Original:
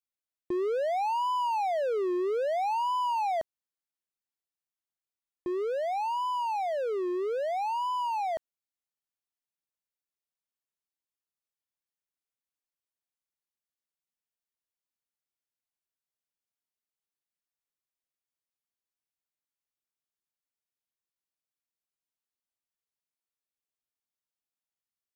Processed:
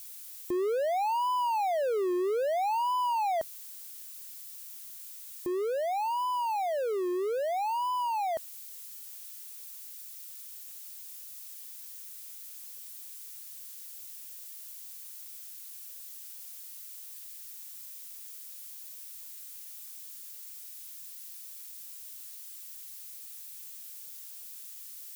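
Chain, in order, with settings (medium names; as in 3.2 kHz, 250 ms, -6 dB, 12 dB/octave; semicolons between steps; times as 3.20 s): zero-crossing glitches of -38.5 dBFS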